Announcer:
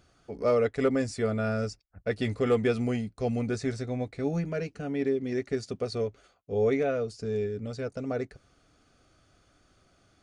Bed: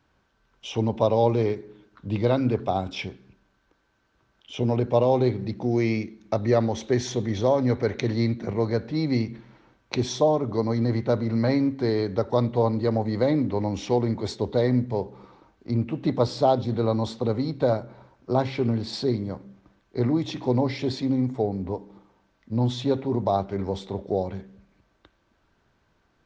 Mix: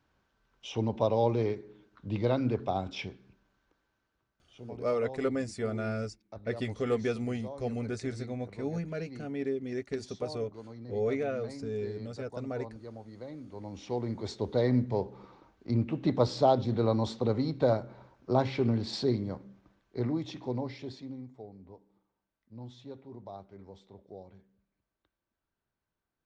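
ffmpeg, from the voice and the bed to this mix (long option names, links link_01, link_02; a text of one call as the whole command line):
ffmpeg -i stem1.wav -i stem2.wav -filter_complex "[0:a]adelay=4400,volume=-5dB[link_01];[1:a]volume=12dB,afade=type=out:start_time=3.59:duration=0.92:silence=0.16788,afade=type=in:start_time=13.46:duration=1.39:silence=0.125893,afade=type=out:start_time=19.04:duration=2.24:silence=0.125893[link_02];[link_01][link_02]amix=inputs=2:normalize=0" out.wav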